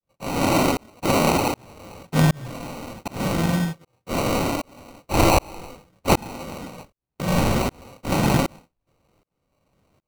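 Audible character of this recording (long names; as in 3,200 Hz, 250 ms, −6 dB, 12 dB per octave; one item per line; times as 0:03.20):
aliases and images of a low sample rate 1,700 Hz, jitter 0%
tremolo saw up 1.3 Hz, depth 100%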